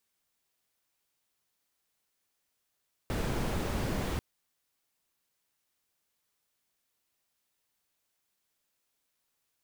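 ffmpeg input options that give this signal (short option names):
-f lavfi -i "anoisesrc=c=brown:a=0.124:d=1.09:r=44100:seed=1"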